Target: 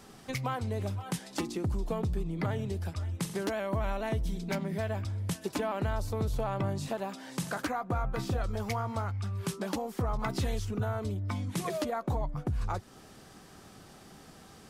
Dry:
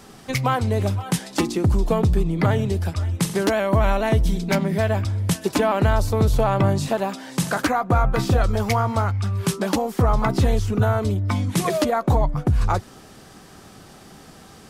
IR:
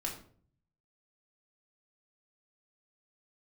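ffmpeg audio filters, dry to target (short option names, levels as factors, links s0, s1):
-filter_complex "[0:a]acompressor=threshold=0.0316:ratio=1.5,asettb=1/sr,asplit=3[s0][s1][s2];[s0]atrim=end=10.174[s3];[s1]atrim=start=10.17:end=10.65,asetpts=PTS-STARTPTS,afade=t=in:d=0.004:c=qsin,afade=t=out:st=0.476:d=0.004:c=qsin,adynamicequalizer=threshold=0.00891:dfrequency=1500:dqfactor=0.7:tfrequency=1500:tqfactor=0.7:attack=5:release=100:ratio=0.375:range=3:mode=boostabove:tftype=highshelf[s4];[s2]atrim=start=10.646[s5];[s3][s4]acrossfade=d=0.004:c1=hsin:c2=qsin[s6];[s6][s5]acrossfade=d=0.004:c1=qsin:c2=hsin,volume=0.422"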